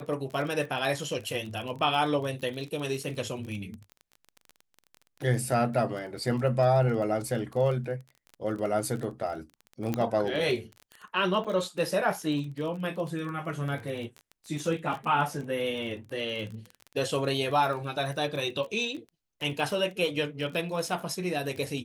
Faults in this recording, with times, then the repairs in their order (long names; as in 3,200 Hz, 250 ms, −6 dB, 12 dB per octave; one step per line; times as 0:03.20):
surface crackle 23 per second −34 dBFS
0:09.94: click −15 dBFS
0:11.44–0:11.45: drop-out 6.7 ms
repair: click removal
repair the gap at 0:11.44, 6.7 ms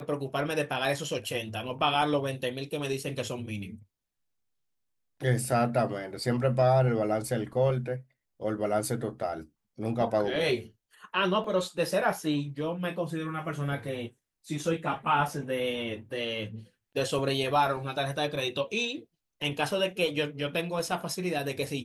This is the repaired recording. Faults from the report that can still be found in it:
none of them is left